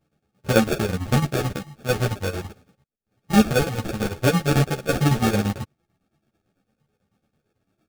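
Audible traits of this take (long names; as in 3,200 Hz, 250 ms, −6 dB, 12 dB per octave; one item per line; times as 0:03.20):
phaser sweep stages 12, 0.46 Hz, lowest notch 720–1,500 Hz
aliases and images of a low sample rate 1,000 Hz, jitter 0%
chopped level 9 Hz, depth 65%, duty 65%
a shimmering, thickened sound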